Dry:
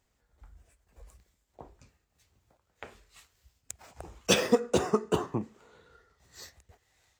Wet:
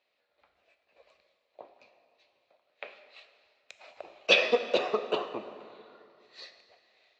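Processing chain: cabinet simulation 490–4200 Hz, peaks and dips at 590 Hz +9 dB, 880 Hz -4 dB, 1.5 kHz -4 dB, 2.5 kHz +9 dB, 4.1 kHz +9 dB; plate-style reverb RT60 2.4 s, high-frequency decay 0.65×, DRR 8.5 dB

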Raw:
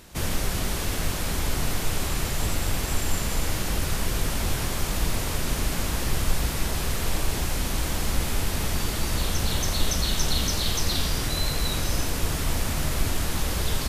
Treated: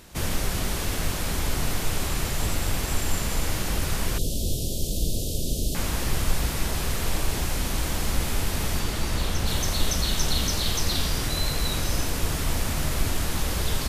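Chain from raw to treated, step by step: 4.18–5.75 s: inverse Chebyshev band-stop 980–2000 Hz, stop band 50 dB; 8.79–9.46 s: treble shelf 9.9 kHz -> 5.1 kHz -5.5 dB

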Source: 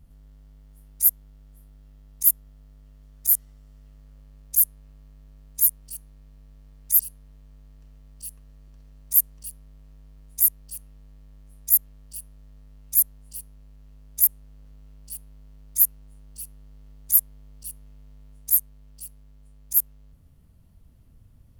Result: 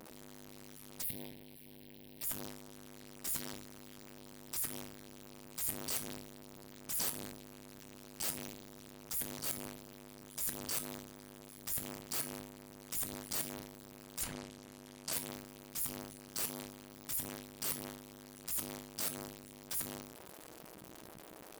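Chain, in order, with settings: jump at every zero crossing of -30 dBFS; spectral gate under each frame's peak -15 dB weak; 14.21–15.13 s: low-pass that closes with the level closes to 2.9 kHz, closed at -22.5 dBFS; level held to a coarse grid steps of 20 dB; 1.02–2.23 s: static phaser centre 3 kHz, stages 4; feedback comb 320 Hz, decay 0.24 s, harmonics all, mix 40%; transient shaper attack -5 dB, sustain +10 dB; trim +9.5 dB

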